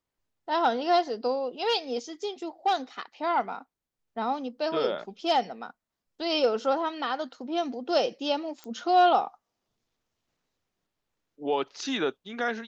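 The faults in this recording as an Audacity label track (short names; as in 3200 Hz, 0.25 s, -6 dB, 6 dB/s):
8.640000	8.640000	pop -26 dBFS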